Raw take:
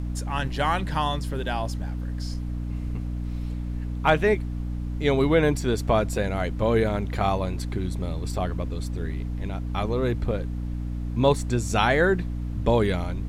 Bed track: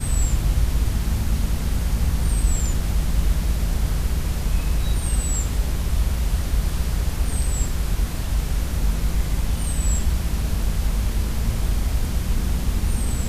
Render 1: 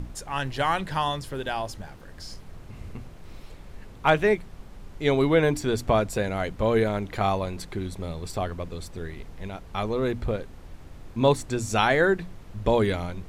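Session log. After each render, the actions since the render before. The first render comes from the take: notches 60/120/180/240/300 Hz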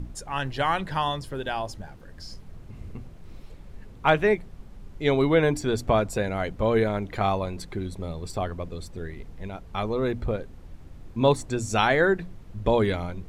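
denoiser 6 dB, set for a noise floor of -45 dBFS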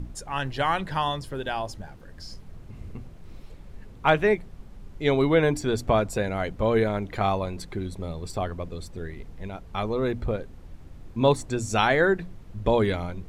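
nothing audible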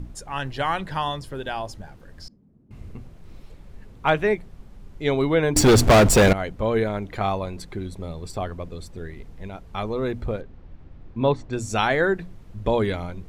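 2.28–2.71 band-pass 240 Hz, Q 2.7; 5.56–6.33 sample leveller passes 5; 10.41–11.53 air absorption 200 m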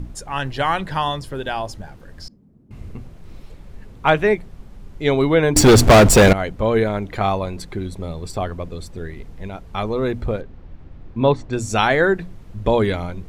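gain +4.5 dB

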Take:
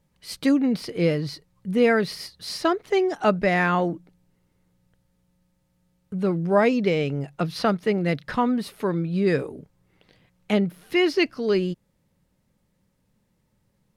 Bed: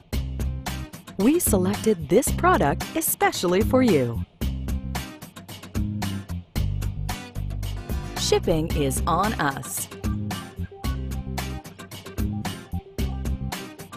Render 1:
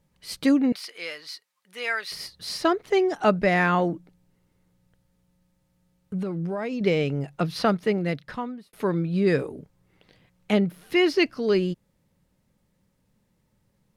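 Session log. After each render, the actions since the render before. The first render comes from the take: 0.72–2.12 HPF 1300 Hz; 6.18–6.81 compressor 16:1, threshold -25 dBFS; 7.81–8.73 fade out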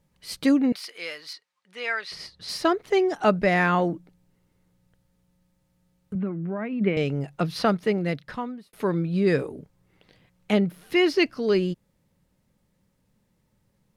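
1.33–2.49 air absorption 68 m; 6.15–6.97 speaker cabinet 180–2500 Hz, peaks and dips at 210 Hz +7 dB, 490 Hz -7 dB, 850 Hz -5 dB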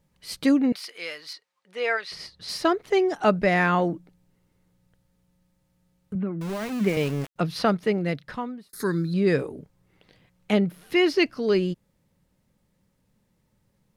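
1.29–1.96 bell 500 Hz +3.5 dB -> +10.5 dB 1.4 oct; 6.41–7.36 sample gate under -32 dBFS; 8.69–9.14 EQ curve 390 Hz 0 dB, 630 Hz -14 dB, 1700 Hz +8 dB, 2800 Hz -19 dB, 4100 Hz +13 dB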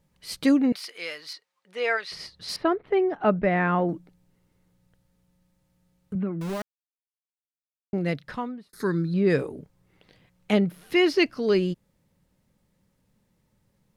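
2.56–3.89 air absorption 480 m; 6.62–7.93 mute; 8.47–9.29 LPF 4300 Hz -> 2300 Hz 6 dB/oct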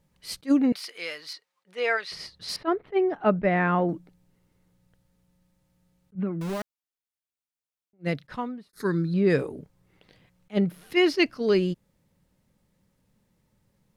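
attack slew limiter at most 460 dB/s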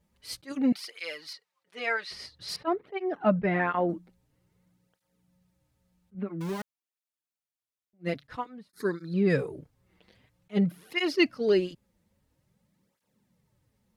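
tape flanging out of phase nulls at 0.5 Hz, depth 7.7 ms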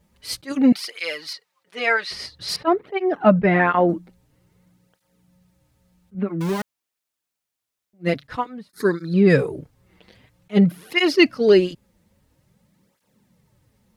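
gain +9.5 dB; limiter -2 dBFS, peak gain reduction 1.5 dB

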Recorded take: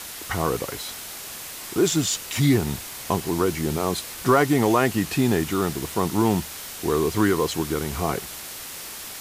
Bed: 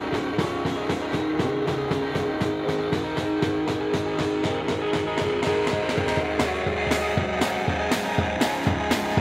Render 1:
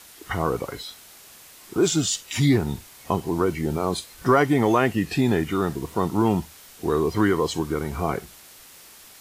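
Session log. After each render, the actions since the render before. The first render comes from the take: noise print and reduce 11 dB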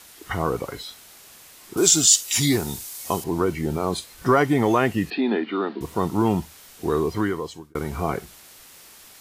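1.77–3.24 tone controls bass -5 dB, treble +13 dB; 5.1–5.81 Chebyshev band-pass 210–4400 Hz, order 5; 6.98–7.75 fade out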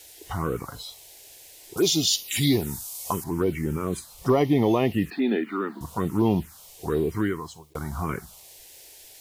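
requantised 10-bit, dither none; envelope phaser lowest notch 190 Hz, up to 1500 Hz, full sweep at -16.5 dBFS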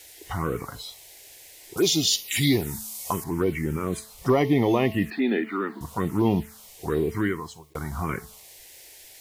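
bell 2000 Hz +5.5 dB 0.53 oct; de-hum 217.9 Hz, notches 5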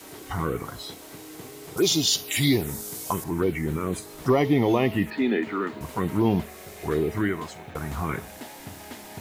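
add bed -18.5 dB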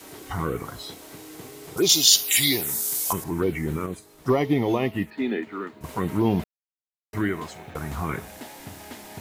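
1.89–3.13 tilt +3 dB/oct; 3.86–5.84 upward expander, over -37 dBFS; 6.44–7.13 mute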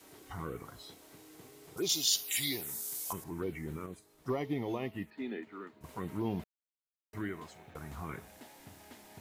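gain -13 dB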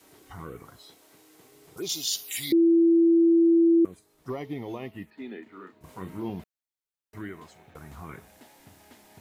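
0.76–1.52 low shelf 190 Hz -9.5 dB; 2.52–3.85 bleep 334 Hz -15.5 dBFS; 5.43–6.3 doubler 32 ms -6 dB

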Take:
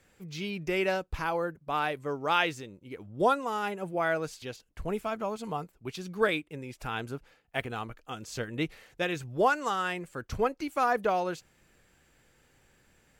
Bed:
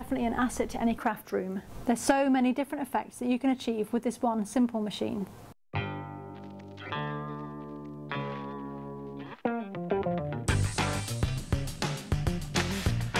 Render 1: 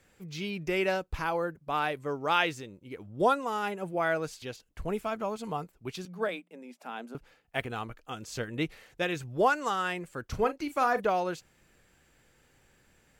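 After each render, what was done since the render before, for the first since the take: 6.05–7.15 rippled Chebyshev high-pass 170 Hz, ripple 9 dB; 10.29–11.01 doubler 38 ms -12 dB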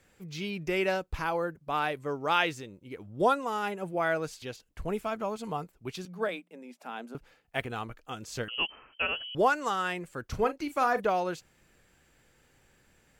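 8.48–9.35 inverted band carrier 3100 Hz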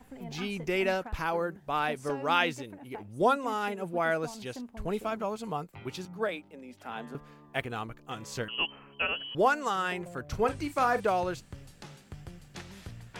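add bed -16 dB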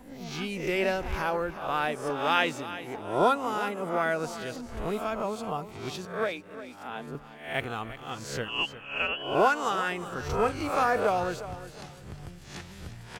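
spectral swells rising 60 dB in 0.51 s; feedback echo 0.357 s, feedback 29%, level -14 dB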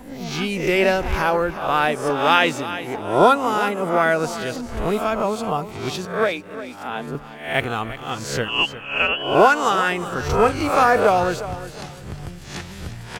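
gain +9.5 dB; limiter -3 dBFS, peak gain reduction 3 dB

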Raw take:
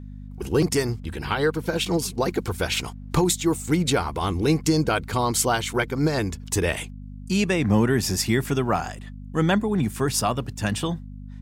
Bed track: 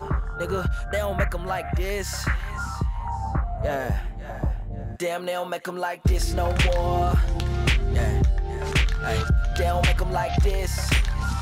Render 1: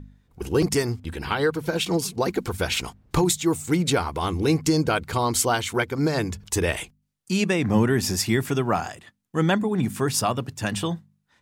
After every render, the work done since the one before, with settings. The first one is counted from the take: de-hum 50 Hz, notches 5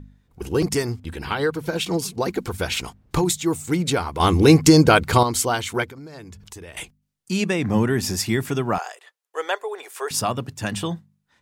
4.2–5.23 gain +8.5 dB; 5.86–6.77 compressor 5:1, threshold -38 dBFS; 8.78–10.11 elliptic high-pass 430 Hz, stop band 50 dB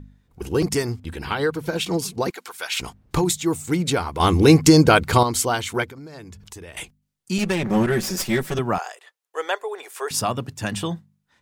2.3–2.79 HPF 1000 Hz; 7.38–8.59 minimum comb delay 5.3 ms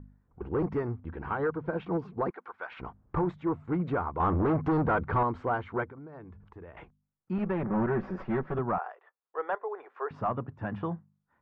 overloaded stage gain 17 dB; ladder low-pass 1600 Hz, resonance 30%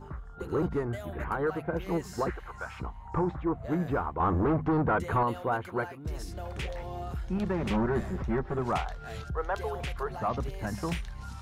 add bed track -15.5 dB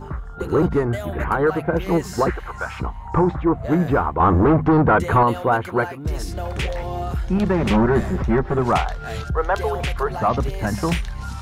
gain +11 dB

